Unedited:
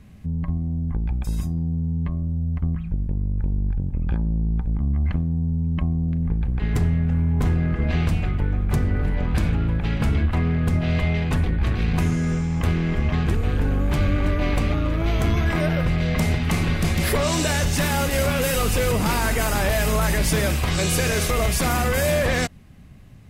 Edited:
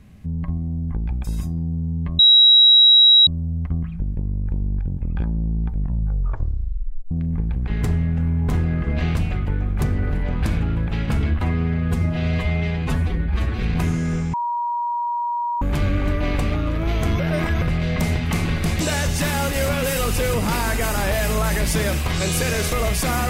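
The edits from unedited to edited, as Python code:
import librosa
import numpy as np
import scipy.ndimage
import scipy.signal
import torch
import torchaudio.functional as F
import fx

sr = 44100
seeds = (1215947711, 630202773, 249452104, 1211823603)

y = fx.edit(x, sr, fx.insert_tone(at_s=2.19, length_s=1.08, hz=3860.0, db=-8.0),
    fx.tape_stop(start_s=4.61, length_s=1.42),
    fx.stretch_span(start_s=10.34, length_s=1.47, factor=1.5),
    fx.bleep(start_s=12.52, length_s=1.28, hz=954.0, db=-20.5),
    fx.reverse_span(start_s=15.38, length_s=0.42),
    fx.cut(start_s=16.99, length_s=0.39), tone=tone)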